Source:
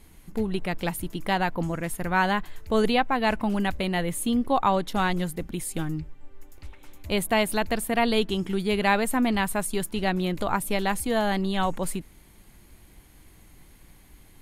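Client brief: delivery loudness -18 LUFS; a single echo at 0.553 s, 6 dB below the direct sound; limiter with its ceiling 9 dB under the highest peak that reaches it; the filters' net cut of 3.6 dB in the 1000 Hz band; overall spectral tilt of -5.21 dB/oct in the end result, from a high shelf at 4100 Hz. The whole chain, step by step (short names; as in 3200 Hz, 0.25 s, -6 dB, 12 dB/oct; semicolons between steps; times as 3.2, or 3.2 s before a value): bell 1000 Hz -4.5 dB; high shelf 4100 Hz -5 dB; limiter -20 dBFS; echo 0.553 s -6 dB; gain +12 dB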